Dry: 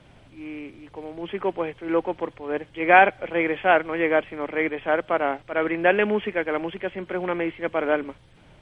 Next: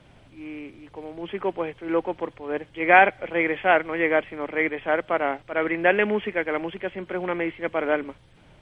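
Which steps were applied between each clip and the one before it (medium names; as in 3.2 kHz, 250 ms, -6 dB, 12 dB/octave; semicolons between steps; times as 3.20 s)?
dynamic bell 2 kHz, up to +5 dB, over -39 dBFS, Q 4.6; trim -1 dB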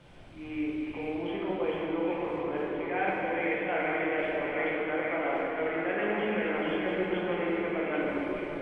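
reverse; compression 5:1, threshold -31 dBFS, peak gain reduction 19.5 dB; reverse; repeats whose band climbs or falls 434 ms, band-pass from 2.8 kHz, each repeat -1.4 oct, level -0.5 dB; simulated room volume 150 m³, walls hard, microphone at 0.79 m; trim -3.5 dB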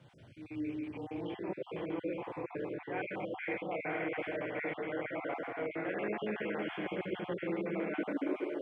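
random holes in the spectrogram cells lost 28%; high-pass sweep 110 Hz -> 350 Hz, 7.30–8.51 s; trim -6.5 dB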